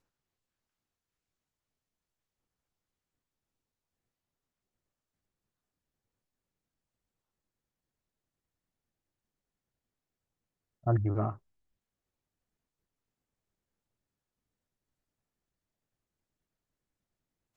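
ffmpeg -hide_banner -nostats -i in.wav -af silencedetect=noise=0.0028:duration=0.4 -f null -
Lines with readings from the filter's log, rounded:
silence_start: 0.00
silence_end: 10.84 | silence_duration: 10.84
silence_start: 11.37
silence_end: 17.56 | silence_duration: 6.19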